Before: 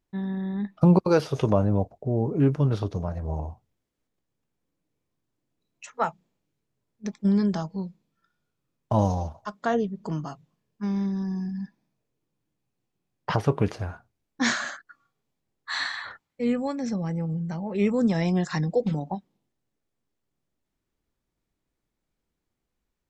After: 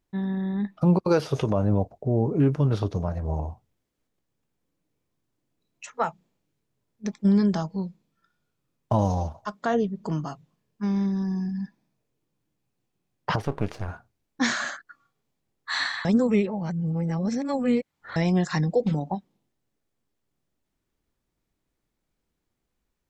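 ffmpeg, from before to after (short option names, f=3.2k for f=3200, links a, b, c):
-filter_complex "[0:a]asettb=1/sr,asplit=3[a][b][c];[a]atrim=end=13.424[d];[b]atrim=start=13.42:end=13.88,asetpts=PTS-STARTPTS,afade=t=in:d=0.004:c=qsin,afade=t=out:st=0.456:d=0.004:c=qsin,aeval=exprs='if(lt(val(0),0),0.251*val(0),val(0))':c=same[e];[c]atrim=start=13.876[f];[d][e]acrossfade=d=0.004:c1=hsin:c2=qsin[g];[g][f]acrossfade=d=0.004:c1=qsin:c2=hsin,asplit=3[h][i][j];[h]atrim=end=16.052[k];[i]atrim=start=16.048:end=18.162,asetpts=PTS-STARTPTS,areverse[l];[j]atrim=start=18.158[m];[k][l]acrossfade=d=0.004:c1=hsin:c2=hsin[n];[n][m]acrossfade=d=0.004:c1=hsin:c2=hsin,alimiter=limit=-14dB:level=0:latency=1:release=149,volume=2dB"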